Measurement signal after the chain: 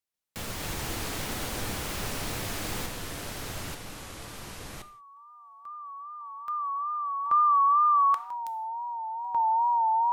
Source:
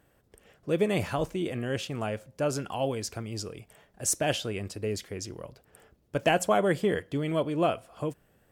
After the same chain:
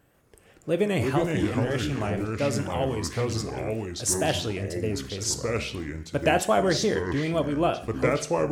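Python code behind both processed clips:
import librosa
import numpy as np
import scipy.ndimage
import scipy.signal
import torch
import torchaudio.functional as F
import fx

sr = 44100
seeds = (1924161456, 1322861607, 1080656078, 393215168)

y = fx.echo_pitch(x, sr, ms=138, semitones=-4, count=2, db_per_echo=-3.0)
y = fx.rev_gated(y, sr, seeds[0], gate_ms=210, shape='falling', drr_db=10.0)
y = fx.wow_flutter(y, sr, seeds[1], rate_hz=2.1, depth_cents=70.0)
y = y * librosa.db_to_amplitude(1.5)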